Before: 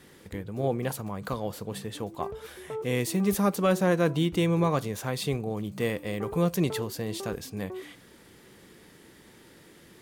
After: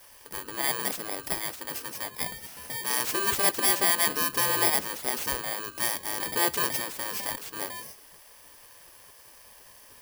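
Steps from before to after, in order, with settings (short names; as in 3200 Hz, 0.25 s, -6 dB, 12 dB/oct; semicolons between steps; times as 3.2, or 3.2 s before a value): FFT order left unsorted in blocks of 32 samples; spectral gate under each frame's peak -10 dB weak; gain +5 dB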